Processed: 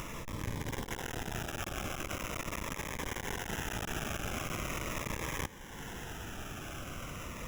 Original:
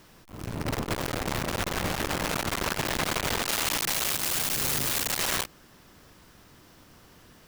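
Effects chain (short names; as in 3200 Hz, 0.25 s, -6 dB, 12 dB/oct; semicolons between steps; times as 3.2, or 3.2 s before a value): in parallel at +1.5 dB: upward compressor, threshold -31 dBFS; on the sum: low shelf 470 Hz -11.5 dB; sample-rate reducer 4400 Hz, jitter 0%; reverse; compressor 8:1, threshold -34 dBFS, peak gain reduction 16.5 dB; reverse; low shelf 140 Hz +10 dB; cascading phaser falling 0.41 Hz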